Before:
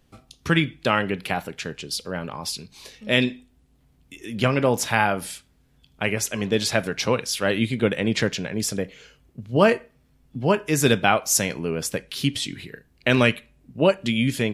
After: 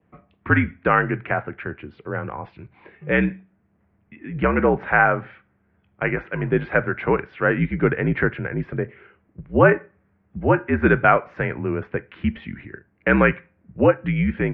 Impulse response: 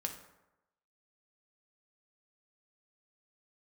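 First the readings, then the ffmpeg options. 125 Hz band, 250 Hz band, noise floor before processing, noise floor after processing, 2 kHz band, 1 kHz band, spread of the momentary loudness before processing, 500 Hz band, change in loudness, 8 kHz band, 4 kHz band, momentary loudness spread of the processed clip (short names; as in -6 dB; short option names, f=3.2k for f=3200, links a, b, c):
+2.5 dB, +1.5 dB, -61 dBFS, -65 dBFS, +4.0 dB, +3.5 dB, 15 LU, +2.0 dB, +2.0 dB, under -40 dB, under -15 dB, 17 LU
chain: -af "highpass=f=150:t=q:w=0.5412,highpass=f=150:t=q:w=1.307,lowpass=f=2.2k:t=q:w=0.5176,lowpass=f=2.2k:t=q:w=0.7071,lowpass=f=2.2k:t=q:w=1.932,afreqshift=-61,adynamicequalizer=threshold=0.0126:dfrequency=1500:dqfactor=3.2:tfrequency=1500:tqfactor=3.2:attack=5:release=100:ratio=0.375:range=3:mode=boostabove:tftype=bell,volume=2.5dB"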